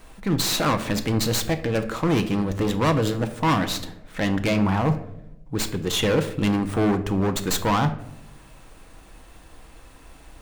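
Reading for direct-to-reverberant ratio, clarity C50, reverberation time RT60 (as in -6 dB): 7.0 dB, 12.5 dB, 0.90 s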